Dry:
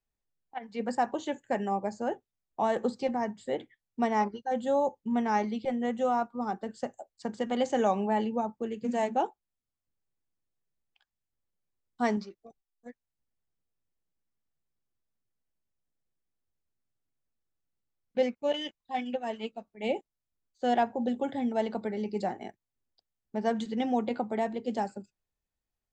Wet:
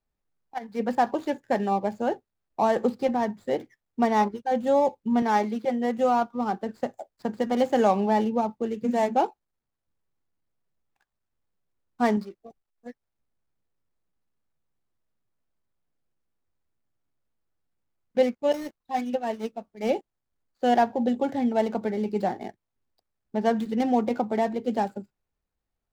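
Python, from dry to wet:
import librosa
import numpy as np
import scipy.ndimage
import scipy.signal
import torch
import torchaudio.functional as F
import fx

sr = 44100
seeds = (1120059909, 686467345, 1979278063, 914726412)

y = scipy.ndimage.median_filter(x, 15, mode='constant')
y = fx.highpass(y, sr, hz=200.0, slope=12, at=(5.22, 5.98))
y = y * 10.0 ** (5.5 / 20.0)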